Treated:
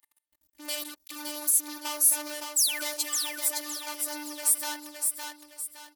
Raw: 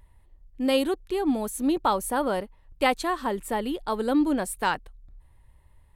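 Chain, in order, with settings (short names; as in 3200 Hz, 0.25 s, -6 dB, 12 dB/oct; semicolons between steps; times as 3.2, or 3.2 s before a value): painted sound fall, 2.56–3.06, 250–8400 Hz -36 dBFS; sample leveller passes 5; in parallel at +2 dB: compressor, threshold -29 dBFS, peak gain reduction 15 dB; on the sum: robotiser 297 Hz; differentiator; on a send: feedback echo 0.564 s, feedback 37%, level -4.5 dB; on the sum: gain -6 dB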